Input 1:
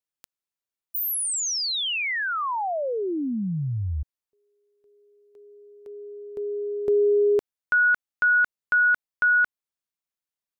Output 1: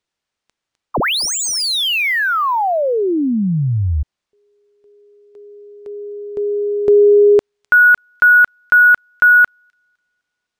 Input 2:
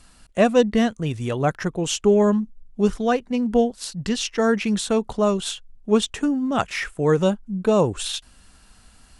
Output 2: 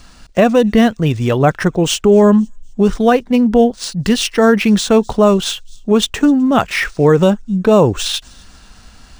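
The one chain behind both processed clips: feedback echo behind a high-pass 255 ms, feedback 37%, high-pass 5.5 kHz, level -21 dB; loudness maximiser +11.5 dB; decimation joined by straight lines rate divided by 3×; trim -1 dB

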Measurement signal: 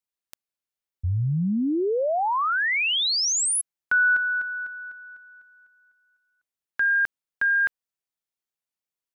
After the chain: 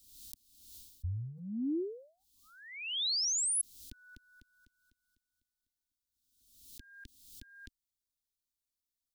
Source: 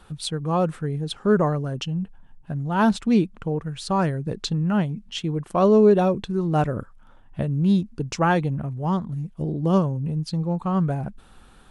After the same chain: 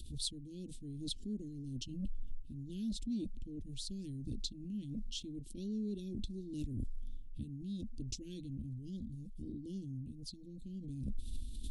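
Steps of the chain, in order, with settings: elliptic band-stop 260–3700 Hz, stop band 80 dB; bass shelf 200 Hz +10 dB; reverse; compression 6:1, threshold -32 dBFS; reverse; static phaser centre 390 Hz, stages 4; swell ahead of each attack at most 57 dB/s; trim +1 dB

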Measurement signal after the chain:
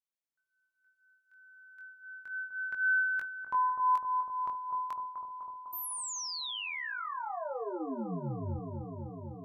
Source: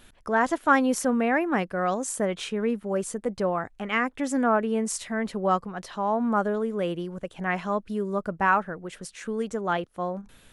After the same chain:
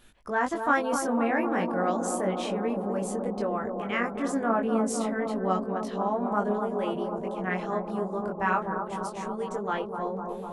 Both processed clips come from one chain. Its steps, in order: chorus 0.31 Hz, delay 19.5 ms, depth 2.9 ms; bucket-brigade echo 251 ms, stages 2048, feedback 83%, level -6 dB; trim -1 dB

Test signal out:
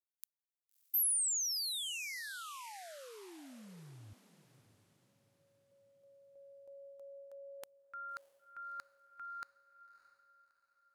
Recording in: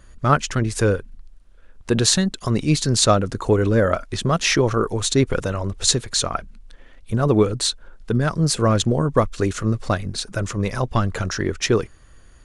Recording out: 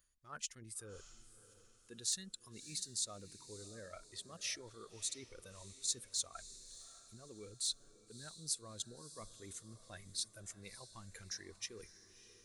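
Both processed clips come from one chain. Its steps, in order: reverse; compression 5:1, threshold -30 dBFS; reverse; spectral noise reduction 10 dB; hard clipper -19 dBFS; pre-emphasis filter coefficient 0.9; echo that smears into a reverb 621 ms, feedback 42%, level -14.5 dB; trim -2.5 dB

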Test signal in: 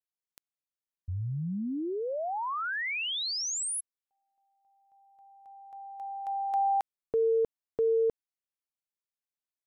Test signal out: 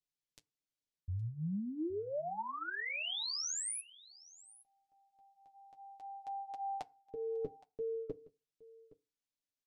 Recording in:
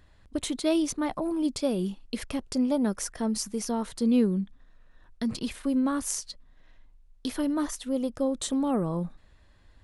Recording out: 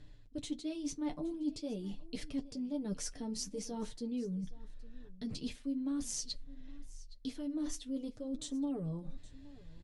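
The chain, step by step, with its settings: low-pass 6.1 kHz 12 dB/octave; peaking EQ 1.2 kHz -14 dB 2.1 oct; comb 6.8 ms, depth 43%; reverse; compression 10:1, threshold -40 dBFS; reverse; flange 0.46 Hz, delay 6.7 ms, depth 5.8 ms, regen -32%; on a send: delay 817 ms -20.5 dB; on the sum: FDN reverb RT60 0.33 s, low-frequency decay 1.05×, high-frequency decay 0.6×, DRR 17.5 dB; trim +7.5 dB

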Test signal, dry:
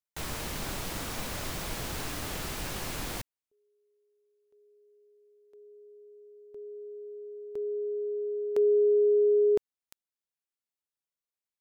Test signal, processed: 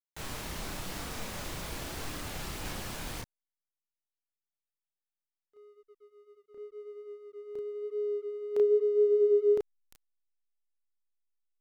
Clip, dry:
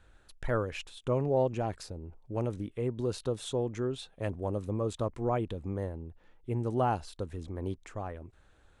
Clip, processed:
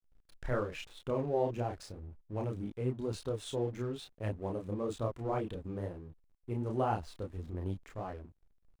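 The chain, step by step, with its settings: chorus voices 2, 0.93 Hz, delay 30 ms, depth 3.8 ms; hysteresis with a dead band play -51 dBFS

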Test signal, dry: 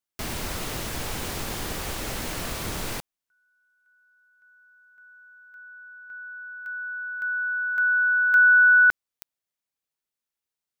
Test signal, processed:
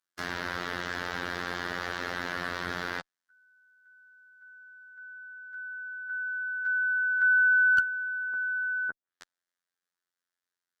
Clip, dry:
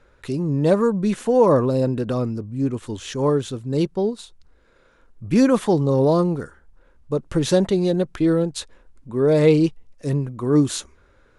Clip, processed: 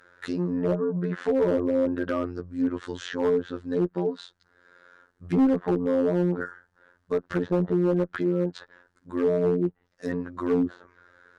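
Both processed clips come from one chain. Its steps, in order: frequency weighting D; low-pass that closes with the level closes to 440 Hz, closed at -14.5 dBFS; resonant high shelf 2 kHz -7 dB, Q 3; robot voice 88.3 Hz; one-sided clip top -16.5 dBFS

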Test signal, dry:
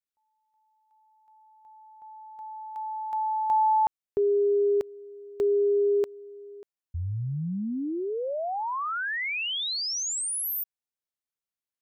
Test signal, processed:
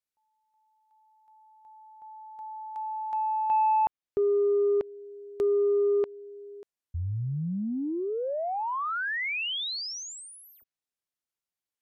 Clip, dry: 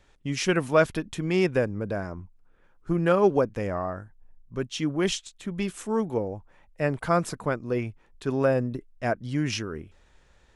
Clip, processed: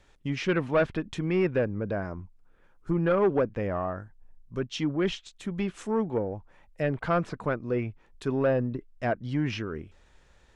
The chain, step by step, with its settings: saturation -16.5 dBFS; low-pass that closes with the level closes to 2.8 kHz, closed at -26 dBFS

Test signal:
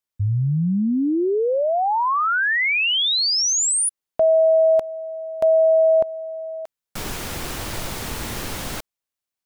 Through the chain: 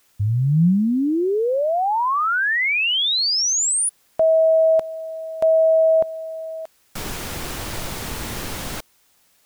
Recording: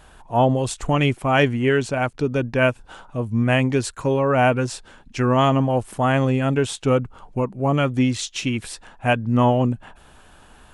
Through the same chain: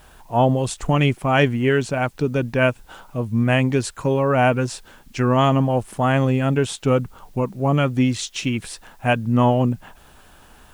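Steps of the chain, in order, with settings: dynamic bell 170 Hz, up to +6 dB, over -39 dBFS, Q 3.6; word length cut 10-bit, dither triangular

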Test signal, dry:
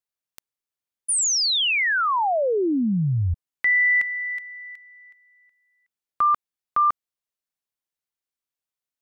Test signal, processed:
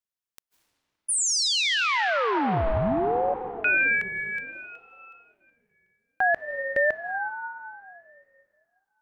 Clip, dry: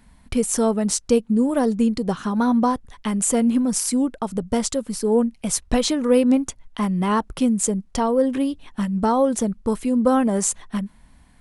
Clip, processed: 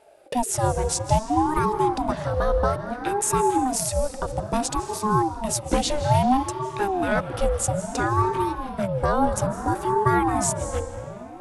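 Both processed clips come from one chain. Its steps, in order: algorithmic reverb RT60 3 s, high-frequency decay 0.7×, pre-delay 120 ms, DRR 8.5 dB; ring modulator with a swept carrier 460 Hz, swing 40%, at 0.6 Hz

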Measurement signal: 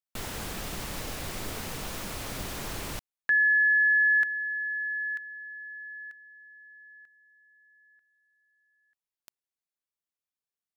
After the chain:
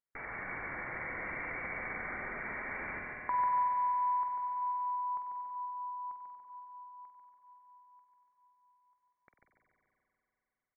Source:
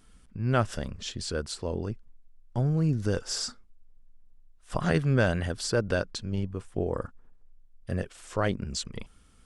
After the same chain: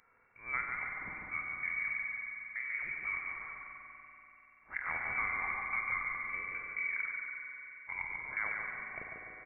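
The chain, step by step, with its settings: elliptic high-pass 390 Hz, stop band 40 dB; compression 2.5:1, threshold -38 dBFS; on a send: feedback delay 144 ms, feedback 51%, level -4.5 dB; on the sum: spring tank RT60 3.6 s, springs 45 ms, chirp 45 ms, DRR 1 dB; frequency inversion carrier 2.7 kHz

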